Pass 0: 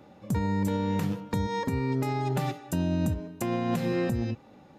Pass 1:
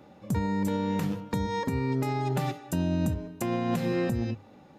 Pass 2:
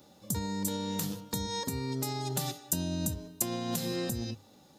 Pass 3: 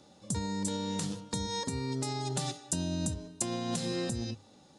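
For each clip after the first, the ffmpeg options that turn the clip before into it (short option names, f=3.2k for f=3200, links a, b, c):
-af "bandreject=f=50:t=h:w=6,bandreject=f=100:t=h:w=6"
-af "aexciter=amount=6.3:drive=4.5:freq=3.4k,volume=-6.5dB"
-af "aresample=22050,aresample=44100"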